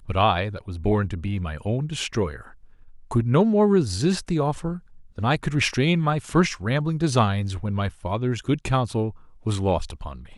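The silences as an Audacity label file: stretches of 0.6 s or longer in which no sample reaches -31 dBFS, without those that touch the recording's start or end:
2.410000	3.110000	silence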